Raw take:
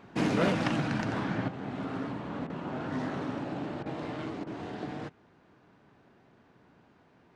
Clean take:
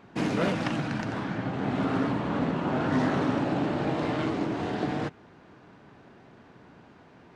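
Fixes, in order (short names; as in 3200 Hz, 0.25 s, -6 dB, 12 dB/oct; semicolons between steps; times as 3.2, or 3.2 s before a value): interpolate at 2.47/3.83/4.44, 27 ms; gain 0 dB, from 1.48 s +8.5 dB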